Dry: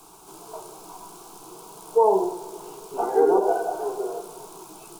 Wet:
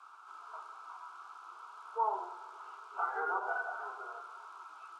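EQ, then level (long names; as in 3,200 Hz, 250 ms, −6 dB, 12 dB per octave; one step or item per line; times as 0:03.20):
four-pole ladder band-pass 1,400 Hz, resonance 80%
+6.0 dB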